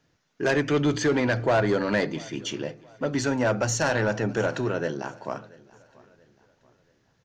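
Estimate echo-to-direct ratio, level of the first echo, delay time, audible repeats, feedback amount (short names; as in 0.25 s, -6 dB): -22.5 dB, -23.0 dB, 0.682 s, 2, 39%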